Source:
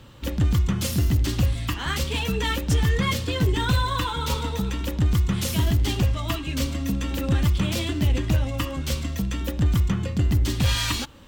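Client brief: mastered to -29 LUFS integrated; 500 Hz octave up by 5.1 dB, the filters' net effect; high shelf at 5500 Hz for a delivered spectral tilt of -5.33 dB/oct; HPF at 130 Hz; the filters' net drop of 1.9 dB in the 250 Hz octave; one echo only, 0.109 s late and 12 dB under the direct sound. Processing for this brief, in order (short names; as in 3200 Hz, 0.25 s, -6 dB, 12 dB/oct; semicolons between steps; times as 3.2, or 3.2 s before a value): HPF 130 Hz; bell 250 Hz -3.5 dB; bell 500 Hz +7 dB; high shelf 5500 Hz -8 dB; echo 0.109 s -12 dB; gain -1.5 dB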